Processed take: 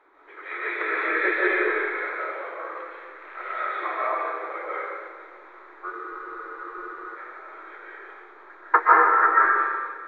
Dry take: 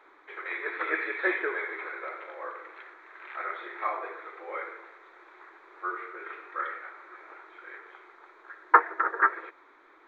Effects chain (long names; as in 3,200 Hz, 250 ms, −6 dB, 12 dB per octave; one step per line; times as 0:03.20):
comb and all-pass reverb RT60 1.7 s, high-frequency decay 0.8×, pre-delay 105 ms, DRR −7 dB
frozen spectrum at 0:05.95, 1.22 s
one half of a high-frequency compander decoder only
level −1 dB